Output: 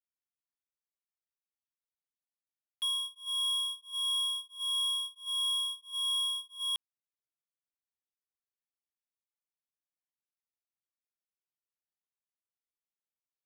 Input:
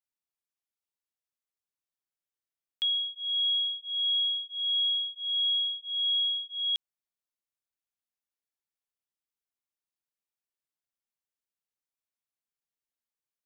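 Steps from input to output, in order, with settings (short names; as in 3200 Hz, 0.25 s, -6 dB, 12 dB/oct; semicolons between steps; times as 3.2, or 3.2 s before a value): median filter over 9 samples; gate -38 dBFS, range -7 dB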